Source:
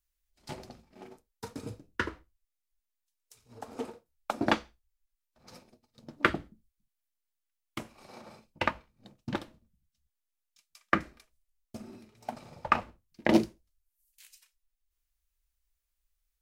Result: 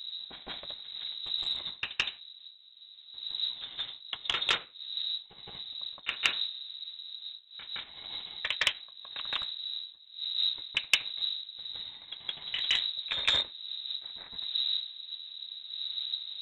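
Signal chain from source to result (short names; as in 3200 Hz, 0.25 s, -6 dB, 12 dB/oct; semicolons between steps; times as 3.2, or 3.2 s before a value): delay-line pitch shifter -5 st; wind noise 140 Hz -41 dBFS; bell 2900 Hz +9.5 dB 1.9 oct; reverse echo 0.166 s -7.5 dB; inverted band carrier 3900 Hz; core saturation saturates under 4000 Hz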